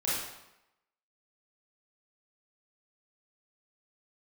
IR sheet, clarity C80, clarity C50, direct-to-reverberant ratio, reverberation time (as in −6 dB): 3.0 dB, −1.5 dB, −9.0 dB, 0.90 s